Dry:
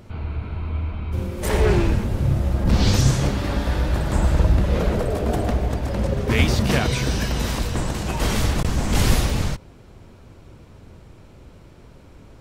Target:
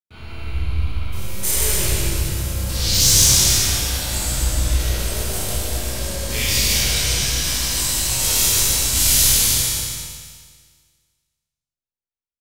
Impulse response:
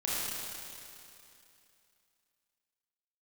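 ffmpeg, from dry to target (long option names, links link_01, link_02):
-filter_complex "[0:a]asplit=3[link_01][link_02][link_03];[link_01]afade=type=out:start_time=3:duration=0.02[link_04];[link_02]acontrast=88,afade=type=in:start_time=3:duration=0.02,afade=type=out:start_time=3.49:duration=0.02[link_05];[link_03]afade=type=in:start_time=3.49:duration=0.02[link_06];[link_04][link_05][link_06]amix=inputs=3:normalize=0,asoftclip=type=tanh:threshold=-10dB,flanger=delay=8.7:depth=1.2:regen=-81:speed=0.81:shape=triangular,agate=range=-59dB:threshold=-37dB:ratio=16:detection=peak,aecho=1:1:150|262.5|346.9|410.2|457.6:0.631|0.398|0.251|0.158|0.1,crystalizer=i=9.5:c=0,asettb=1/sr,asplit=3[link_07][link_08][link_09];[link_07]atrim=end=0.434[link_10];[link_08]atrim=start=0.43:end=0.94,asetpts=PTS-STARTPTS,afade=type=in:duration=0.004:curve=qsin,afade=type=out:start_time=0.506:duration=0.004:curve=qsin,equalizer=frequency=64:width_type=o:width=2.2:gain=12.5[link_11];[link_09]atrim=start=0.936[link_12];[link_10][link_11]acrossfade=duration=0.004:curve1=hsin:curve2=qsin[link_13];[link_13][link_12]acrossfade=duration=0.004:curve1=qsin:curve2=hsin,acrossover=split=140|3000[link_14][link_15][link_16];[link_15]acompressor=threshold=-42dB:ratio=1.5[link_17];[link_14][link_17][link_16]amix=inputs=3:normalize=0,asettb=1/sr,asplit=3[link_18][link_19][link_20];[link_18]atrim=end=6.724[link_21];[link_19]atrim=start=6.72:end=7.71,asetpts=PTS-STARTPTS,afade=type=in:duration=0.004:curve=qsin,afade=type=out:start_time=0.986:duration=0.004:curve=qsin,highshelf=frequency=7100:gain=-8[link_22];[link_20]atrim=start=7.706[link_23];[link_21][link_22]acrossfade=duration=0.004:curve1=hsin:curve2=qsin[link_24];[link_24][link_23]acrossfade=duration=0.004:curve1=qsin:curve2=hsin[link_25];[1:a]atrim=start_sample=2205,asetrate=70560,aresample=44100[link_26];[link_25][link_26]afir=irnorm=-1:irlink=0,volume=-2.5dB"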